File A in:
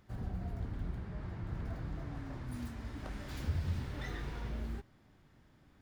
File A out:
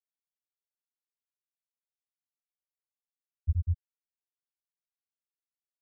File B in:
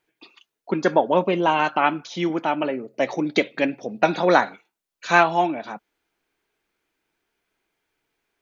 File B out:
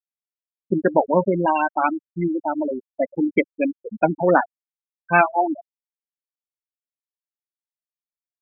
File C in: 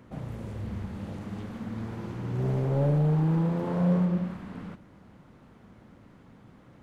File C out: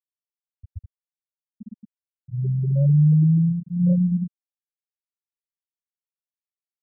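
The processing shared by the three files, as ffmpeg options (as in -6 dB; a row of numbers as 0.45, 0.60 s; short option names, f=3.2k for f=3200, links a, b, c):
-filter_complex "[0:a]asplit=2[a][b];[b]adelay=13,volume=-13.5dB[c];[a][c]amix=inputs=2:normalize=0,afftfilt=real='re*gte(hypot(re,im),0.282)':imag='im*gte(hypot(re,im),0.282)':win_size=1024:overlap=0.75,bass=f=250:g=8,treble=f=4k:g=12"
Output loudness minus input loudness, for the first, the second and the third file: +8.0, 0.0, +9.0 LU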